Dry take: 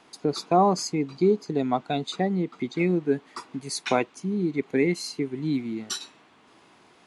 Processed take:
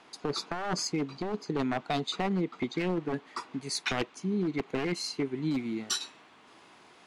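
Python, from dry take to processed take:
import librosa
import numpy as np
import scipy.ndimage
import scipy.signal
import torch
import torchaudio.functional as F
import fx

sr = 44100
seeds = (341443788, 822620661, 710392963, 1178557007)

y = np.minimum(x, 2.0 * 10.0 ** (-21.5 / 20.0) - x)
y = fx.low_shelf(y, sr, hz=440.0, db=-5.5)
y = fx.over_compress(y, sr, threshold_db=-29.0, ratio=-1.0)
y = fx.high_shelf(y, sr, hz=8600.0, db=fx.steps((0.0, -12.0), (5.53, -3.0)))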